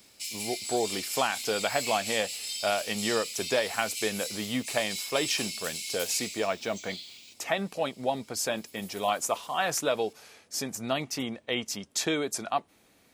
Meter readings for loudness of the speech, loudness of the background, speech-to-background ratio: -31.0 LUFS, -34.5 LUFS, 3.5 dB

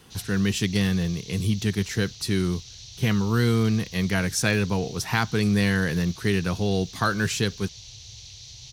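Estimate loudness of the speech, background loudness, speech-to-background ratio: -25.0 LUFS, -41.5 LUFS, 16.5 dB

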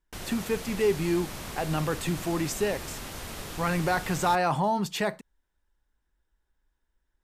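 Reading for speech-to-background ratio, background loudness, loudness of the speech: 10.0 dB, -38.5 LUFS, -28.5 LUFS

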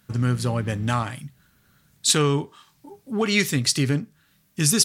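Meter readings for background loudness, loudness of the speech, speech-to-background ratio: -41.5 LUFS, -23.0 LUFS, 18.5 dB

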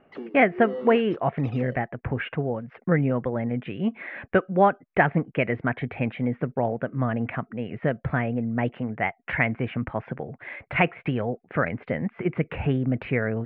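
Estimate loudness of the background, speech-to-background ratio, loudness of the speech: -37.5 LUFS, 11.5 dB, -26.0 LUFS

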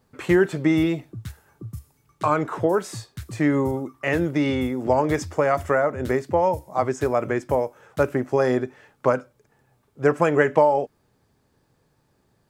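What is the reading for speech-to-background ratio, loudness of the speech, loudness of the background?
18.0 dB, -22.5 LUFS, -40.5 LUFS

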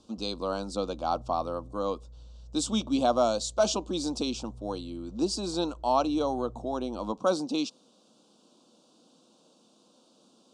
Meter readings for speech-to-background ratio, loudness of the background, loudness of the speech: 19.5 dB, -49.5 LUFS, -30.0 LUFS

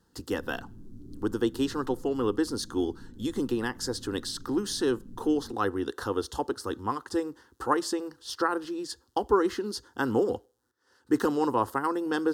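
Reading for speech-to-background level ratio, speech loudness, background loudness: 20.0 dB, -30.0 LUFS, -50.0 LUFS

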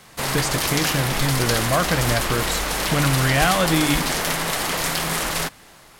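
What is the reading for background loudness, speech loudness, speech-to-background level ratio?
-22.5 LUFS, -23.0 LUFS, -0.5 dB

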